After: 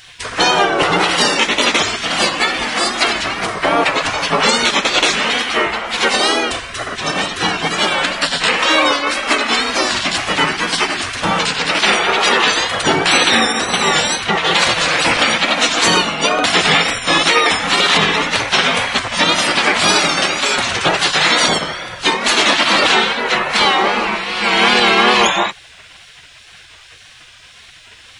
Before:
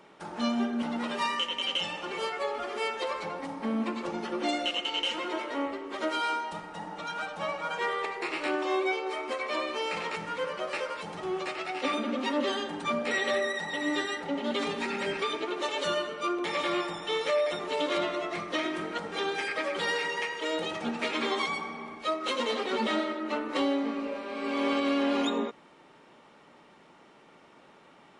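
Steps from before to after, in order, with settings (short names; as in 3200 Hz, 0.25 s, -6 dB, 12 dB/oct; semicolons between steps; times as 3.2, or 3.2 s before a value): wow and flutter 83 cents; spectral gate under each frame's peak -15 dB weak; maximiser +27.5 dB; gain -1 dB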